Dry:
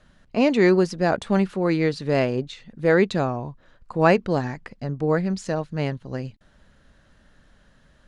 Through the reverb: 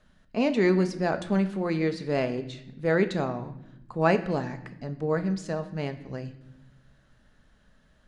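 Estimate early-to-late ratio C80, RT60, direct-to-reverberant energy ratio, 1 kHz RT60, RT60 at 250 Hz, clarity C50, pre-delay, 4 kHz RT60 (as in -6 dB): 15.5 dB, 0.90 s, 8.5 dB, 0.75 s, 1.5 s, 13.0 dB, 5 ms, 0.70 s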